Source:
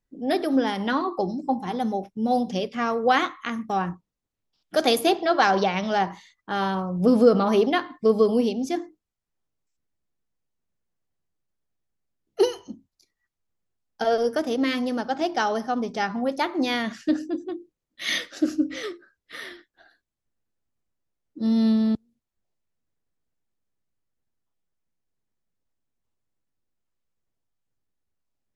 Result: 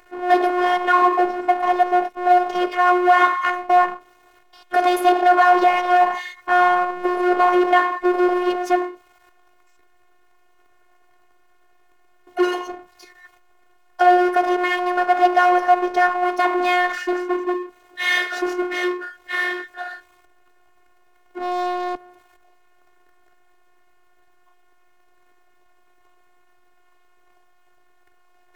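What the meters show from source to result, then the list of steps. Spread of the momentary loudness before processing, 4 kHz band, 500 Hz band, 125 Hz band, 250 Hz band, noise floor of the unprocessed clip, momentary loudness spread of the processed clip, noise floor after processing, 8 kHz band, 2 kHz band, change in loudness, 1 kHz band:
11 LU, 0.0 dB, +3.5 dB, under -20 dB, 0.0 dB, -84 dBFS, 12 LU, -56 dBFS, n/a, +9.5 dB, +5.5 dB, +11.0 dB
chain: power-law curve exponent 0.5; limiter -10 dBFS, peak gain reduction 4.5 dB; three-band isolator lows -21 dB, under 440 Hz, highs -18 dB, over 2200 Hz; robotiser 359 Hz; gain +6.5 dB

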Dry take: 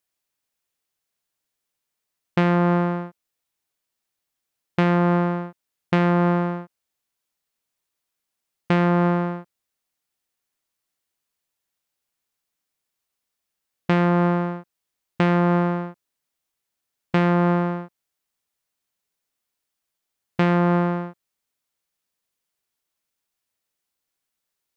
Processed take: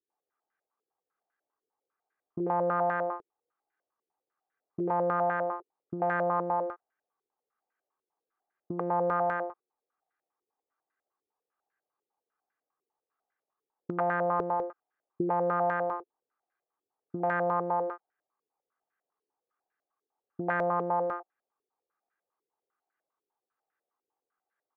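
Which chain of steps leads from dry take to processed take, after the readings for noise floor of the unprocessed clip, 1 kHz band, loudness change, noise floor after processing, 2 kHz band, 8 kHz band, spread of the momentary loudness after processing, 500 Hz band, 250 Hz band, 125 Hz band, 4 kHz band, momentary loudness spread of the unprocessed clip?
-82 dBFS, -3.0 dB, -9.0 dB, under -85 dBFS, -6.5 dB, n/a, 13 LU, -5.0 dB, -16.0 dB, -19.5 dB, under -25 dB, 15 LU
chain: half-wave gain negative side -7 dB; comb 2.5 ms, depth 42%; bands offset in time lows, highs 90 ms, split 380 Hz; compressor, threshold -28 dBFS, peak gain reduction 8.5 dB; HPF 270 Hz 12 dB/oct; air absorption 320 m; stepped low-pass 10 Hz 420–1600 Hz; gain +2.5 dB

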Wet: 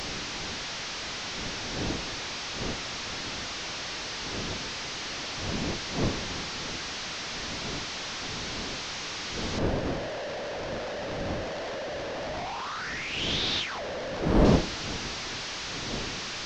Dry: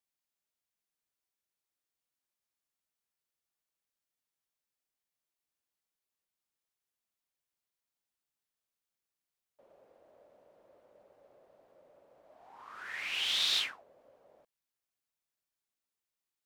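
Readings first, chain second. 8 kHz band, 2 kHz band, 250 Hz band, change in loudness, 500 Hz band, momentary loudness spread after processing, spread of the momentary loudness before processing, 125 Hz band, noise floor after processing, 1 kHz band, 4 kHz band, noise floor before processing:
+14.5 dB, +11.5 dB, +38.5 dB, 0.0 dB, +29.0 dB, 7 LU, 18 LU, n/a, -36 dBFS, +20.5 dB, +7.0 dB, under -85 dBFS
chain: delta modulation 32 kbps, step -30 dBFS; wind noise 360 Hz -36 dBFS; gain +1.5 dB

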